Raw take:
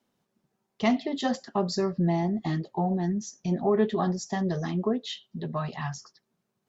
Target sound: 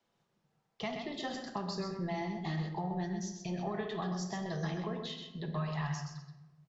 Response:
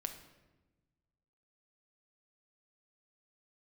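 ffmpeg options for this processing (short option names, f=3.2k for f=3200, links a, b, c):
-filter_complex "[0:a]lowpass=6.4k,equalizer=f=250:w=1.6:g=-10,acrossover=split=280|1200[a][b][c];[a]acompressor=threshold=-41dB:ratio=4[d];[b]acompressor=threshold=-43dB:ratio=4[e];[c]acompressor=threshold=-43dB:ratio=4[f];[d][e][f]amix=inputs=3:normalize=0,aecho=1:1:128:0.447[g];[1:a]atrim=start_sample=2205[h];[g][h]afir=irnorm=-1:irlink=0,volume=1.5dB"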